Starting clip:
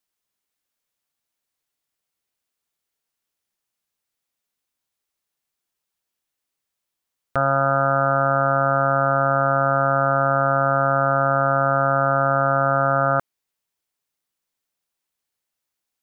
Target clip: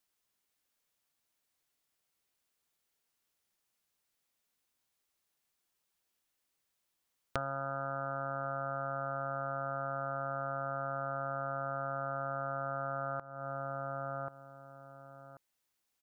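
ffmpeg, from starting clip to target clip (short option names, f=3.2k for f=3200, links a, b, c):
-filter_complex "[0:a]asplit=2[a][b];[b]adelay=1086,lowpass=f=1.4k:p=1,volume=-15.5dB,asplit=2[c][d];[d]adelay=1086,lowpass=f=1.4k:p=1,volume=0.16[e];[c][e]amix=inputs=2:normalize=0[f];[a][f]amix=inputs=2:normalize=0,acompressor=threshold=-34dB:ratio=8"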